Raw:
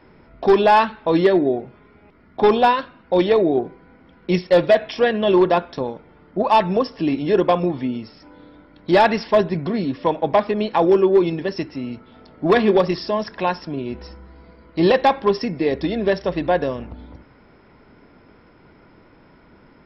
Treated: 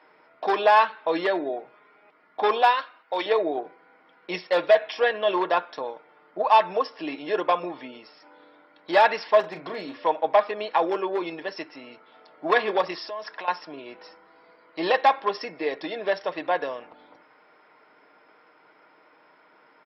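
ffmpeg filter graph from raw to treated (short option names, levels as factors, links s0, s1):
-filter_complex "[0:a]asettb=1/sr,asplit=3[s0][s1][s2];[s0]atrim=end=2.624[s3];[s1]atrim=start=2.62:end=3.26,asetpts=PTS-STARTPTS,afade=t=in:d=0.004:c=qsin,afade=t=out:st=0.636:d=0.004:c=qsin,agate=range=0.0224:threshold=0.00355:ratio=3:release=100:detection=peak,lowpass=f=2800:p=1,aemphasis=mode=production:type=riaa[s4];[s2]atrim=start=3.256[s5];[s3][s4]acrossfade=d=0.004:c1=hsin:c2=qsin[s6];[s6][s5]acrossfade=d=0.004:c1=qsin:c2=hsin,asettb=1/sr,asplit=3[s7][s8][s9];[s7]atrim=end=9.404[s10];[s8]atrim=start=9.4:end=10.05,asetpts=PTS-STARTPTS,afade=t=in:d=0.004:c=qsin,afade=t=out:st=0.646:d=0.004:c=qsin,asoftclip=type=hard:threshold=0.168,asplit=2[s11][s12];[s12]adelay=36,volume=0.355[s13];[s11][s13]amix=inputs=2:normalize=0,atrim=end_sample=28665[s14];[s9]atrim=start=10.046[s15];[s10][s14]acrossfade=d=0.004:c1=hsin:c2=qsin[s16];[s16][s15]acrossfade=d=0.004:c1=qsin:c2=hsin,asettb=1/sr,asplit=3[s17][s18][s19];[s17]atrim=end=12.994[s20];[s18]atrim=start=12.99:end=13.48,asetpts=PTS-STARTPTS,afade=t=in:d=0.004:c=qsin,afade=t=out:st=0.486:d=0.004:c=qsin,highpass=f=220:p=1,acompressor=threshold=0.0501:ratio=10:attack=3.2:release=140:knee=1:detection=peak[s21];[s19]atrim=start=13.476[s22];[s20][s21]acrossfade=d=0.004:c1=hsin:c2=qsin[s23];[s23][s22]acrossfade=d=0.004:c1=qsin:c2=hsin,highpass=690,highshelf=f=3700:g=-8.5,aecho=1:1:6.5:0.34"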